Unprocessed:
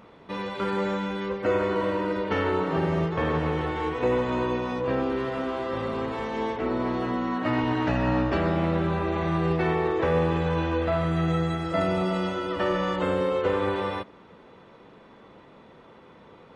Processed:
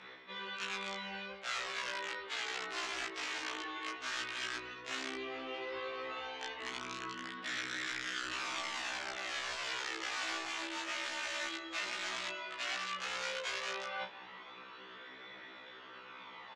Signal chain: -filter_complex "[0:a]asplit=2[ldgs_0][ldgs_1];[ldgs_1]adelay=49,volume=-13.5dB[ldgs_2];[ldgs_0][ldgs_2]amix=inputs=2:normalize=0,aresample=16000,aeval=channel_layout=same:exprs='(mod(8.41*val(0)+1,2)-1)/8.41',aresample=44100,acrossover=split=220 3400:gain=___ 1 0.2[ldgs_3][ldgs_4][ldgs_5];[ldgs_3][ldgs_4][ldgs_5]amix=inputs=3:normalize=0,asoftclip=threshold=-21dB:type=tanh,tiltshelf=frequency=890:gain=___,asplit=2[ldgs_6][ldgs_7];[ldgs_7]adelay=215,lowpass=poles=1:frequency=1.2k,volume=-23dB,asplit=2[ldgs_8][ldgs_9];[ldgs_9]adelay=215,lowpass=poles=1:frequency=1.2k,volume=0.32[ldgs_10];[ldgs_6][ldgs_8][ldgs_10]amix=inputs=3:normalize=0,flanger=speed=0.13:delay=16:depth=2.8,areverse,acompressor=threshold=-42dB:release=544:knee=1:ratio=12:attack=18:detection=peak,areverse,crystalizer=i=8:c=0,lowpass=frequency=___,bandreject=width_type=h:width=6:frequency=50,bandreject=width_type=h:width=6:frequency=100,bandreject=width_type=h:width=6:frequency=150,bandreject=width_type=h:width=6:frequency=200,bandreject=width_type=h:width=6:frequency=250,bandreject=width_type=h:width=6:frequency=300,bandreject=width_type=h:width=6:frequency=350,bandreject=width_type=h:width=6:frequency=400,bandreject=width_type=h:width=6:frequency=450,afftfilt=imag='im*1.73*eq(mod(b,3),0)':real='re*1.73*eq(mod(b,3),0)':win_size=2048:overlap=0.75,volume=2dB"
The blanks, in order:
0.251, -5, 5.1k